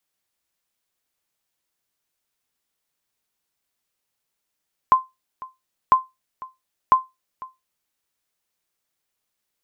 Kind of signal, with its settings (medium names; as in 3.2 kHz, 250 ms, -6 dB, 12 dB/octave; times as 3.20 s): sonar ping 1.04 kHz, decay 0.20 s, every 1.00 s, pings 3, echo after 0.50 s, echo -21 dB -5.5 dBFS